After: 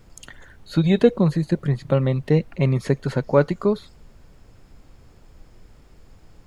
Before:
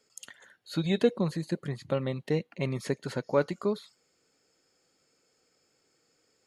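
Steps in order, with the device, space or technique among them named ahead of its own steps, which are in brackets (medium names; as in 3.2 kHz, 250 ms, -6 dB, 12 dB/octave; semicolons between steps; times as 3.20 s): car interior (peaking EQ 140 Hz +6 dB 0.54 oct; treble shelf 3 kHz -8 dB; brown noise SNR 23 dB); trim +8.5 dB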